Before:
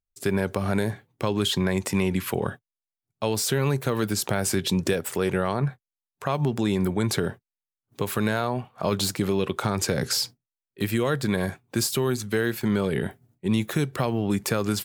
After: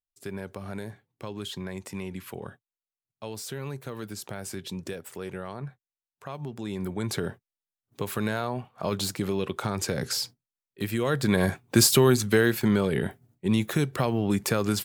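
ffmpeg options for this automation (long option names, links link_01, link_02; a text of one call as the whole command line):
ffmpeg -i in.wav -af "volume=6.5dB,afade=type=in:start_time=6.56:duration=0.73:silence=0.398107,afade=type=in:start_time=10.96:duration=0.9:silence=0.298538,afade=type=out:start_time=11.86:duration=1.02:silence=0.446684" out.wav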